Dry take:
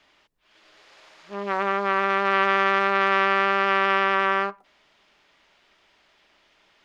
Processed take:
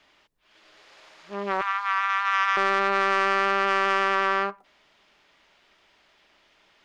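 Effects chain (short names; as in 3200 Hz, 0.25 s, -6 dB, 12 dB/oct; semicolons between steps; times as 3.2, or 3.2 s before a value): 1.61–2.57 steep high-pass 900 Hz 48 dB/oct; soft clip -10 dBFS, distortion -18 dB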